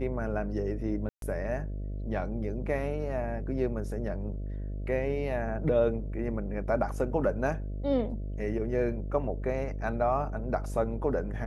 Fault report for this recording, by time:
buzz 50 Hz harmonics 13 -35 dBFS
1.09–1.22 s: dropout 132 ms

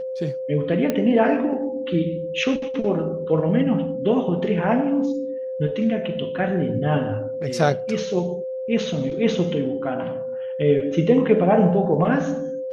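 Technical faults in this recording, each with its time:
whine 520 Hz -26 dBFS
0.90 s: pop -9 dBFS

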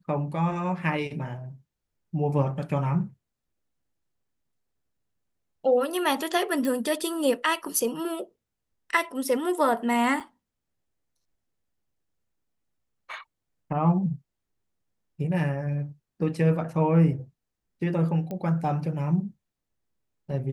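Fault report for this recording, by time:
6.65 s: pop -17 dBFS
10.20–10.21 s: dropout 5.6 ms
18.31 s: pop -22 dBFS

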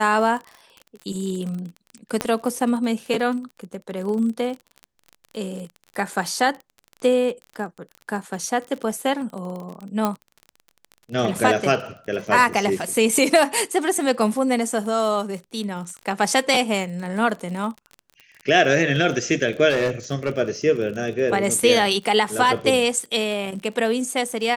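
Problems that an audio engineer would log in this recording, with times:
crackle 32 per s -30 dBFS
2.21 s: pop -7 dBFS
10.05 s: pop -8 dBFS
19.69–20.30 s: clipped -16.5 dBFS

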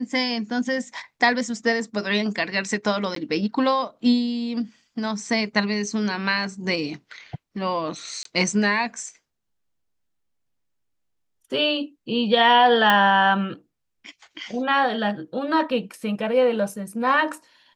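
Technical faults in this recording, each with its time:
3.15–3.16 s: dropout 13 ms
8.23–8.25 s: dropout 23 ms
12.90 s: pop -6 dBFS

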